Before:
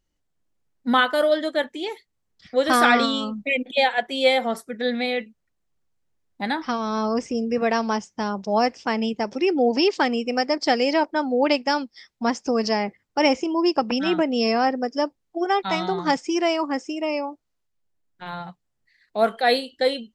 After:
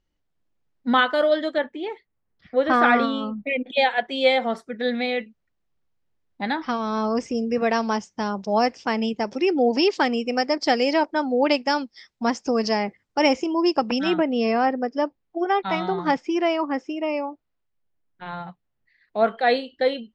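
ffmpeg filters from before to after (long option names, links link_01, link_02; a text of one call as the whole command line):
ffmpeg -i in.wav -af "asetnsamples=nb_out_samples=441:pad=0,asendcmd='1.58 lowpass f 2200;3.66 lowpass f 4500;7.15 lowpass f 7900;14.14 lowpass f 3100',lowpass=4600" out.wav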